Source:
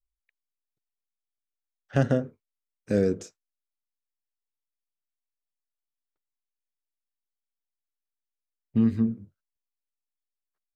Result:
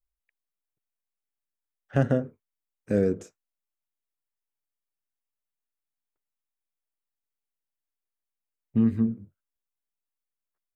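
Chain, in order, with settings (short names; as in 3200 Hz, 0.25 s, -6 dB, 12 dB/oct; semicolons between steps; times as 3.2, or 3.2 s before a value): bell 4800 Hz -9.5 dB 1.2 oct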